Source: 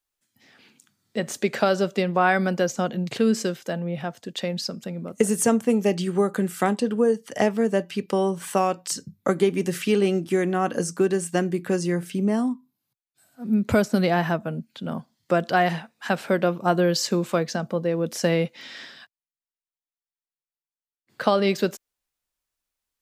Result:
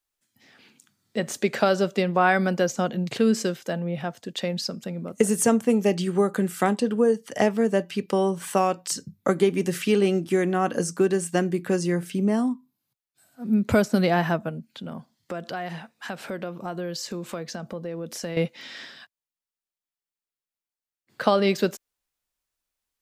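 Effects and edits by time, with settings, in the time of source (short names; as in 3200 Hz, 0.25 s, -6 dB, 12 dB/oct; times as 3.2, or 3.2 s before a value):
14.49–18.37 compressor 2.5:1, threshold -33 dBFS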